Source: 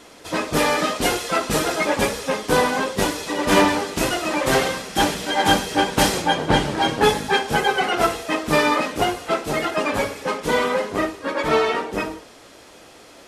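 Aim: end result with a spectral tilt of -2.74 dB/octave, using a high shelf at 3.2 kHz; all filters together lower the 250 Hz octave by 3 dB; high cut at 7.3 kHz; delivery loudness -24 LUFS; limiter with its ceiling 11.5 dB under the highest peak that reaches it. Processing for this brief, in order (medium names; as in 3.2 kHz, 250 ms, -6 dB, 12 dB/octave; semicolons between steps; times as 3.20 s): low-pass 7.3 kHz; peaking EQ 250 Hz -4 dB; treble shelf 3.2 kHz +5.5 dB; trim -0.5 dB; peak limiter -14 dBFS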